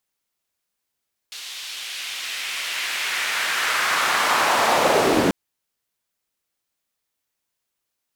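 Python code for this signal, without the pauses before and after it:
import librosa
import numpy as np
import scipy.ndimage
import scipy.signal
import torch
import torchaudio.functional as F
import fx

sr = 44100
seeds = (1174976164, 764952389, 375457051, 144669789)

y = fx.riser_noise(sr, seeds[0], length_s=3.99, colour='white', kind='bandpass', start_hz=3500.0, end_hz=250.0, q=1.5, swell_db=28, law='linear')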